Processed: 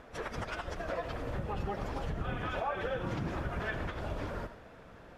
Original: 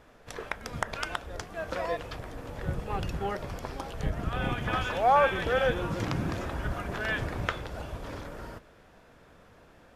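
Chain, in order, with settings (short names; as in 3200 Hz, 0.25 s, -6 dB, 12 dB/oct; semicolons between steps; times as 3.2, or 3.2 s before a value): compressor 8:1, threshold -35 dBFS, peak gain reduction 16.5 dB; high shelf 4900 Hz -10 dB; reverse echo 43 ms -20 dB; on a send at -11 dB: reverb RT60 0.75 s, pre-delay 0.11 s; on the sum: plain phase-vocoder stretch 0.52×; gain +6.5 dB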